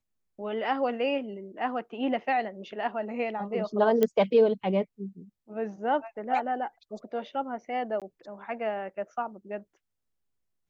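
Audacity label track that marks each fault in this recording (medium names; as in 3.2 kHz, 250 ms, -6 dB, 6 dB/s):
4.030000	4.030000	pop -12 dBFS
8.000000	8.020000	dropout 17 ms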